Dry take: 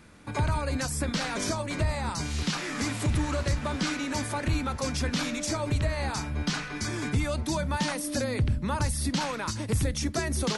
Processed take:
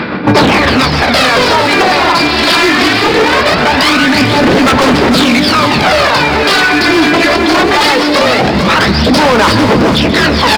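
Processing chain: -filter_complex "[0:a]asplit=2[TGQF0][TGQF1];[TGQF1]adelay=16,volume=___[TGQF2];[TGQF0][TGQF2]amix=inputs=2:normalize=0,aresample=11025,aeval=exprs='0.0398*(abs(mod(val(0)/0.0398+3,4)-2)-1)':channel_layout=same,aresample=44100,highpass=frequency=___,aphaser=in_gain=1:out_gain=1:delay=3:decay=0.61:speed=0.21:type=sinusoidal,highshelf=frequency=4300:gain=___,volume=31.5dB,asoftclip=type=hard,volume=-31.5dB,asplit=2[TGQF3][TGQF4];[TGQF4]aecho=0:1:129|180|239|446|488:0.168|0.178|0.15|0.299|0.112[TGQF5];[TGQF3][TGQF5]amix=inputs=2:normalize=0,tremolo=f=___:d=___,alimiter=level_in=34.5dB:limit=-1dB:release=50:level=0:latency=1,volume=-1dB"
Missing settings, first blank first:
-9dB, 210, -3.5, 7.1, 0.43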